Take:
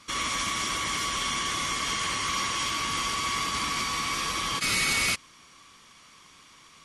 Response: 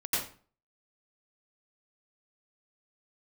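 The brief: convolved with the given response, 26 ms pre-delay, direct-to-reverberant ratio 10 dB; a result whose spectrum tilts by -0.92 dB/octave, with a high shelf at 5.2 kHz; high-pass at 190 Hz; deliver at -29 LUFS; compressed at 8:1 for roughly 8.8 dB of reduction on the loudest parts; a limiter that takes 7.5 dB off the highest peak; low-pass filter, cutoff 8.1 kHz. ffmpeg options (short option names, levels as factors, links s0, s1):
-filter_complex "[0:a]highpass=190,lowpass=8100,highshelf=f=5200:g=-9,acompressor=threshold=0.02:ratio=8,alimiter=level_in=2.11:limit=0.0631:level=0:latency=1,volume=0.473,asplit=2[s0][s1];[1:a]atrim=start_sample=2205,adelay=26[s2];[s1][s2]afir=irnorm=-1:irlink=0,volume=0.133[s3];[s0][s3]amix=inputs=2:normalize=0,volume=2.82"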